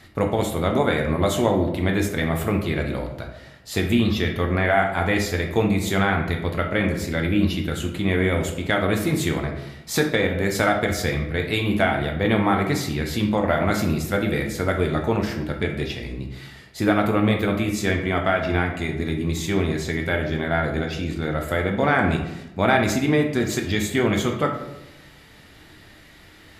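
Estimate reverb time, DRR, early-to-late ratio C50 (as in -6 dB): 0.95 s, 2.0 dB, 6.5 dB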